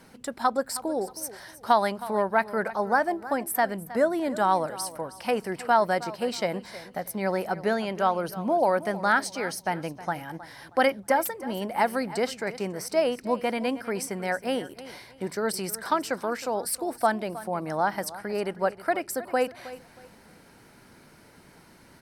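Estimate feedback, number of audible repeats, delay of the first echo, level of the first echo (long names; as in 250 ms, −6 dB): 28%, 2, 316 ms, −16.0 dB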